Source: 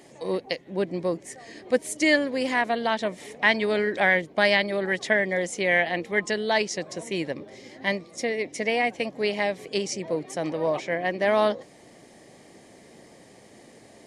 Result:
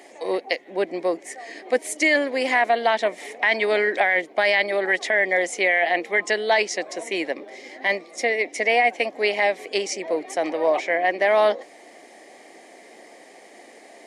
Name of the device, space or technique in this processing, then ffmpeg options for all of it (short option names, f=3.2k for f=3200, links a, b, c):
laptop speaker: -af "highpass=f=280:w=0.5412,highpass=f=280:w=1.3066,equalizer=f=730:t=o:w=0.41:g=7,equalizer=f=2.1k:t=o:w=0.59:g=7,alimiter=limit=-12dB:level=0:latency=1:release=11,volume=2.5dB"